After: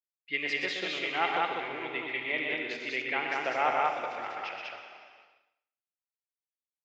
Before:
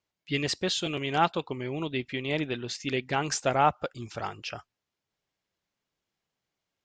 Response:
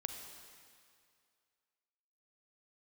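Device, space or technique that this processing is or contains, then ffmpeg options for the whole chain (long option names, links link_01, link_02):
station announcement: -filter_complex "[0:a]highpass=400,lowpass=3500,equalizer=frequency=2100:width_type=o:width=0.55:gain=11.5,aecho=1:1:125.4|195.3:0.501|0.891[link_01];[1:a]atrim=start_sample=2205[link_02];[link_01][link_02]afir=irnorm=-1:irlink=0,agate=range=-33dB:threshold=-50dB:ratio=3:detection=peak,asettb=1/sr,asplit=3[link_03][link_04][link_05];[link_03]atrim=end=3.024[link_06];[link_04]atrim=start=3.02:end=3.85,asetpts=PTS-STARTPTS,afade=type=in:duration=0.004:curve=qsin,afade=type=out:start_time=0.826:duration=0.004:curve=qsin,acrossover=split=4200[link_07][link_08];[link_08]acompressor=threshold=-55dB:ratio=4:attack=1:release=60[link_09];[link_07][link_09]amix=inputs=2:normalize=0[link_10];[link_05]atrim=start=3.846[link_11];[link_06][link_10]acrossfade=duration=0.004:curve1=hsin:curve2=qsin[link_12];[link_12][link_11]acrossfade=duration=0.004:curve1=qsin:curve2=hsin,volume=-4.5dB"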